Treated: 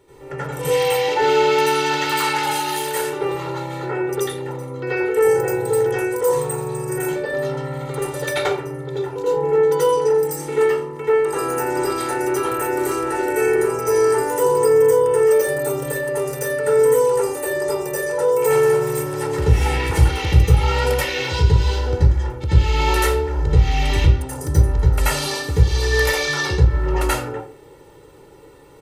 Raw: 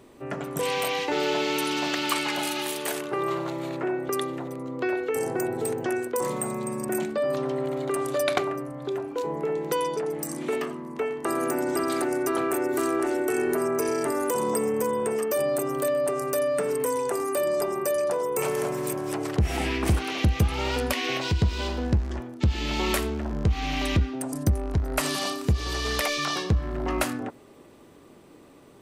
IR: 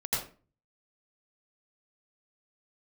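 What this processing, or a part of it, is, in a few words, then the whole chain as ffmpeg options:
microphone above a desk: -filter_complex "[0:a]aecho=1:1:2.2:0.89[a];[1:a]atrim=start_sample=2205[b];[a][b]afir=irnorm=-1:irlink=0,volume=-3dB"

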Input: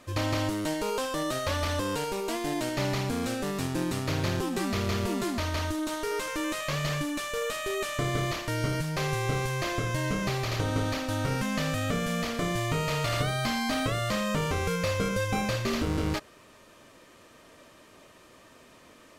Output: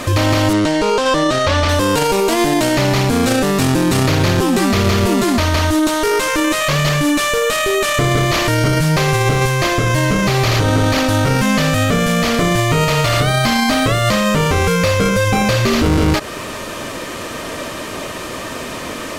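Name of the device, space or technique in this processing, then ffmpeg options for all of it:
loud club master: -filter_complex "[0:a]acompressor=threshold=-36dB:ratio=1.5,asoftclip=type=hard:threshold=-25dB,alimiter=level_in=34.5dB:limit=-1dB:release=50:level=0:latency=1,asettb=1/sr,asplit=3[a][b][c];[a]atrim=end=0.534[d];[b]atrim=start=0.53:end=1.69,asetpts=PTS-STARTPTS,afade=t=in:d=0.004:c=qsin,afade=t=out:st=1.156:d=0.004:c=qsin,lowpass=6.2k[e];[c]atrim=start=1.686[f];[d][e]acrossfade=d=0.004:c1=hsin:c2=qsin[g];[g][f]acrossfade=d=0.004:c1=qsin:c2=hsin,volume=-6.5dB"

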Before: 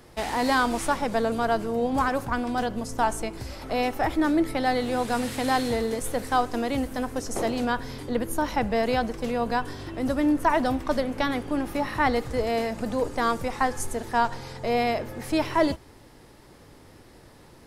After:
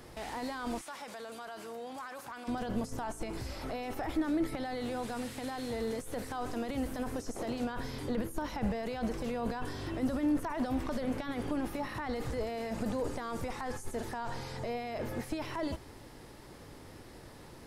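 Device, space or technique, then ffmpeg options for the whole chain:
de-esser from a sidechain: -filter_complex "[0:a]asplit=2[a][b];[b]highpass=f=5.5k:p=1,apad=whole_len=779095[c];[a][c]sidechaincompress=threshold=-49dB:ratio=6:attack=1:release=20,asettb=1/sr,asplit=3[d][e][f];[d]atrim=end=0.814[g];[e]atrim=start=0.81:end=2.48,asetpts=PTS-STARTPTS,afade=t=in:d=0.004:c=qsin,afade=t=out:st=1.666:d=0.004:c=qsin,highpass=f=1.4k:p=1[h];[f]atrim=start=2.476[i];[g][h]acrossfade=d=0.004:c1=hsin:c2=qsin[j];[j][i]acrossfade=d=0.004:c1=qsin:c2=hsin"

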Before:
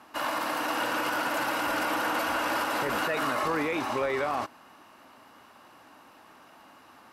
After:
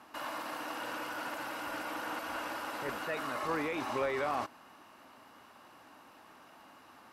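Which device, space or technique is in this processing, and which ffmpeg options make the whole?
de-esser from a sidechain: -filter_complex "[0:a]asplit=2[a][b];[b]highpass=5.8k,apad=whole_len=314389[c];[a][c]sidechaincompress=threshold=-49dB:ratio=8:attack=2.1:release=31,volume=-3dB"

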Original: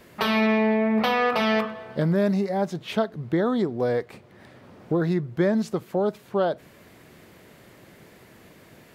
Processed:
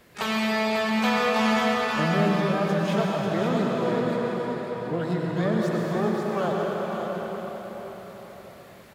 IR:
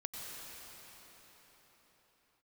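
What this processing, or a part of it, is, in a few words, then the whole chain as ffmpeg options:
shimmer-style reverb: -filter_complex "[0:a]equalizer=f=340:t=o:w=0.7:g=-4.5,asplit=2[a][b];[b]asetrate=88200,aresample=44100,atempo=0.5,volume=-10dB[c];[a][c]amix=inputs=2:normalize=0[d];[1:a]atrim=start_sample=2205[e];[d][e]afir=irnorm=-1:irlink=0,aecho=1:1:543:0.473"

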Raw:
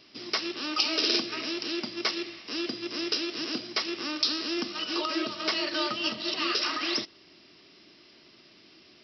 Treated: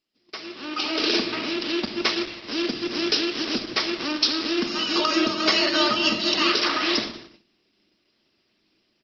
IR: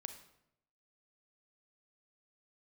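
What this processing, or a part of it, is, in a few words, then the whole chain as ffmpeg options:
speakerphone in a meeting room: -filter_complex "[0:a]asettb=1/sr,asplit=3[a][b][c];[a]atrim=end=0.554[d];[b]atrim=start=0.55:end=2.02,asetpts=PTS-STARTPTS,afade=t=in:d=0.004:c=qsin,afade=t=out:st=1.466:d=0.004:c=qsin,lowpass=5k[e];[c]atrim=start=2.016[f];[d][e]acrossfade=d=0.004:c1=hsin:c2=qsin[g];[g][f]acrossfade=d=0.004:c1=qsin:c2=hsin,asplit=3[h][i][j];[h]afade=t=out:st=2.79:d=0.02[k];[i]bandreject=f=50:t=h:w=6,bandreject=f=100:t=h:w=6,bandreject=f=150:t=h:w=6,bandreject=f=200:t=h:w=6,afade=t=in:st=2.79:d=0.02,afade=t=out:st=4.07:d=0.02[l];[j]afade=t=in:st=4.07:d=0.02[m];[k][l][m]amix=inputs=3:normalize=0,equalizer=f=210:w=5:g=4.5,asplit=2[n][o];[o]adelay=177,lowpass=f=1.2k:p=1,volume=-16.5dB,asplit=2[p][q];[q]adelay=177,lowpass=f=1.2k:p=1,volume=0.45,asplit=2[r][s];[s]adelay=177,lowpass=f=1.2k:p=1,volume=0.45,asplit=2[t][u];[u]adelay=177,lowpass=f=1.2k:p=1,volume=0.45[v];[n][p][r][t][v]amix=inputs=5:normalize=0[w];[1:a]atrim=start_sample=2205[x];[w][x]afir=irnorm=-1:irlink=0,asplit=2[y][z];[z]adelay=110,highpass=300,lowpass=3.4k,asoftclip=type=hard:threshold=-24dB,volume=-25dB[aa];[y][aa]amix=inputs=2:normalize=0,dynaudnorm=f=140:g=11:m=15dB,agate=range=-21dB:threshold=-39dB:ratio=16:detection=peak,volume=-2dB" -ar 48000 -c:a libopus -b:a 16k

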